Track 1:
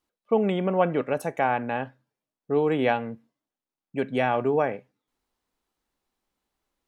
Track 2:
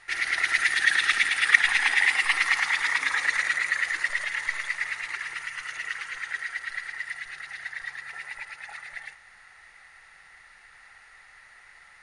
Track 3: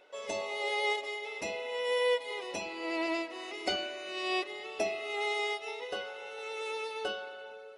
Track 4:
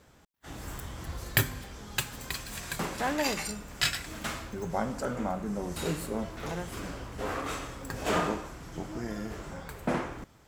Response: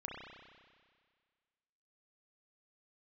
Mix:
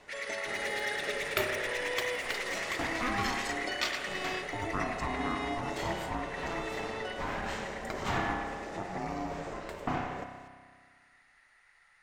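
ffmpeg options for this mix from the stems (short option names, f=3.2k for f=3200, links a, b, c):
-filter_complex "[1:a]asoftclip=type=hard:threshold=-20.5dB,volume=-14dB,asplit=2[a][b];[b]volume=-6dB[c];[2:a]volume=-1.5dB[d];[3:a]aeval=exprs='val(0)*sin(2*PI*500*n/s)':c=same,volume=1.5dB,asplit=2[e][f];[f]volume=-5dB[g];[d][e]amix=inputs=2:normalize=0,lowpass=f=9.6k:w=0.5412,lowpass=f=9.6k:w=1.3066,acompressor=threshold=-37dB:ratio=2.5,volume=0dB[h];[4:a]atrim=start_sample=2205[i];[c][g]amix=inputs=2:normalize=0[j];[j][i]afir=irnorm=-1:irlink=0[k];[a][h][k]amix=inputs=3:normalize=0"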